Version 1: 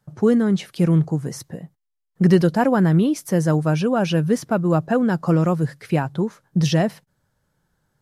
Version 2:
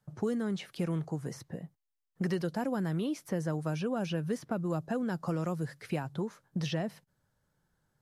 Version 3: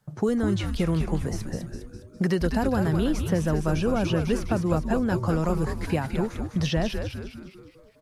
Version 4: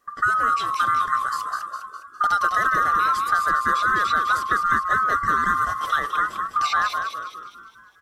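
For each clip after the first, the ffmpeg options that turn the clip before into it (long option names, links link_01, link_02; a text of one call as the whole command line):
ffmpeg -i in.wav -filter_complex "[0:a]acrossover=split=450|3700[link_01][link_02][link_03];[link_01]acompressor=threshold=-26dB:ratio=4[link_04];[link_02]acompressor=threshold=-30dB:ratio=4[link_05];[link_03]acompressor=threshold=-45dB:ratio=4[link_06];[link_04][link_05][link_06]amix=inputs=3:normalize=0,volume=-7dB" out.wav
ffmpeg -i in.wav -filter_complex "[0:a]asplit=7[link_01][link_02][link_03][link_04][link_05][link_06][link_07];[link_02]adelay=204,afreqshift=-130,volume=-5dB[link_08];[link_03]adelay=408,afreqshift=-260,volume=-11dB[link_09];[link_04]adelay=612,afreqshift=-390,volume=-17dB[link_10];[link_05]adelay=816,afreqshift=-520,volume=-23.1dB[link_11];[link_06]adelay=1020,afreqshift=-650,volume=-29.1dB[link_12];[link_07]adelay=1224,afreqshift=-780,volume=-35.1dB[link_13];[link_01][link_08][link_09][link_10][link_11][link_12][link_13]amix=inputs=7:normalize=0,volume=7.5dB" out.wav
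ffmpeg -i in.wav -af "afftfilt=real='real(if(lt(b,960),b+48*(1-2*mod(floor(b/48),2)),b),0)':imag='imag(if(lt(b,960),b+48*(1-2*mod(floor(b/48),2)),b),0)':win_size=2048:overlap=0.75,volume=3dB" out.wav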